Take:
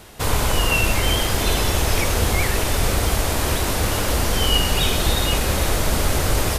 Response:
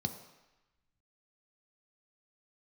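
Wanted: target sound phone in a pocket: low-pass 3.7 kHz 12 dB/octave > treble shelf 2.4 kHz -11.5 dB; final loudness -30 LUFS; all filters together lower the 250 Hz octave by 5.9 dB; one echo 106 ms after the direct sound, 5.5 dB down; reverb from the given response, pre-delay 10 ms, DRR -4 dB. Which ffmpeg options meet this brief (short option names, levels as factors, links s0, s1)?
-filter_complex "[0:a]equalizer=f=250:t=o:g=-8.5,aecho=1:1:106:0.531,asplit=2[s0][s1];[1:a]atrim=start_sample=2205,adelay=10[s2];[s1][s2]afir=irnorm=-1:irlink=0,volume=1.33[s3];[s0][s3]amix=inputs=2:normalize=0,lowpass=3700,highshelf=f=2400:g=-11.5,volume=0.15"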